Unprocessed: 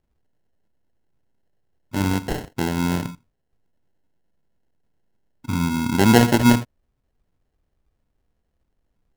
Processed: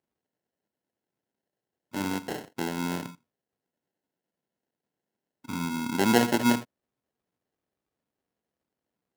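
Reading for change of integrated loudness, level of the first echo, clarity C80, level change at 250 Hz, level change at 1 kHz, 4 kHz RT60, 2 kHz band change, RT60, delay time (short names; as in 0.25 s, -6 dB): -8.0 dB, none, none, -8.0 dB, -6.0 dB, none, -6.0 dB, none, none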